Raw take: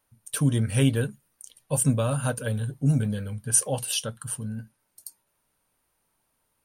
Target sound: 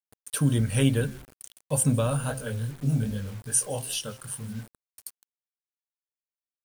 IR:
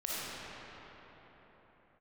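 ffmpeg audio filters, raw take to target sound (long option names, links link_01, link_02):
-filter_complex "[0:a]asplit=3[link_01][link_02][link_03];[link_01]afade=type=out:start_time=2.22:duration=0.02[link_04];[link_02]flanger=delay=19:depth=7.5:speed=2.5,afade=type=in:start_time=2.22:duration=0.02,afade=type=out:start_time=4.54:duration=0.02[link_05];[link_03]afade=type=in:start_time=4.54:duration=0.02[link_06];[link_04][link_05][link_06]amix=inputs=3:normalize=0,bandreject=frequency=131.4:width_type=h:width=4,bandreject=frequency=262.8:width_type=h:width=4,bandreject=frequency=394.2:width_type=h:width=4,bandreject=frequency=525.6:width_type=h:width=4,bandreject=frequency=657:width_type=h:width=4,bandreject=frequency=788.4:width_type=h:width=4,bandreject=frequency=919.8:width_type=h:width=4,bandreject=frequency=1051.2:width_type=h:width=4,bandreject=frequency=1182.6:width_type=h:width=4,bandreject=frequency=1314:width_type=h:width=4,bandreject=frequency=1445.4:width_type=h:width=4,bandreject=frequency=1576.8:width_type=h:width=4,bandreject=frequency=1708.2:width_type=h:width=4,bandreject=frequency=1839.6:width_type=h:width=4,bandreject=frequency=1971:width_type=h:width=4,bandreject=frequency=2102.4:width_type=h:width=4,bandreject=frequency=2233.8:width_type=h:width=4,bandreject=frequency=2365.2:width_type=h:width=4,asplit=3[link_07][link_08][link_09];[link_08]adelay=162,afreqshift=-94,volume=-22.5dB[link_10];[link_09]adelay=324,afreqshift=-188,volume=-32.7dB[link_11];[link_07][link_10][link_11]amix=inputs=3:normalize=0,acrusher=bits=7:mix=0:aa=0.000001"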